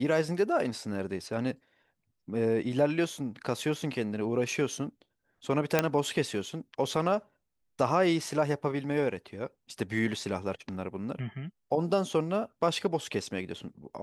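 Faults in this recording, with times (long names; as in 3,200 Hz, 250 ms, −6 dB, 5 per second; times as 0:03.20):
0:05.79: click −8 dBFS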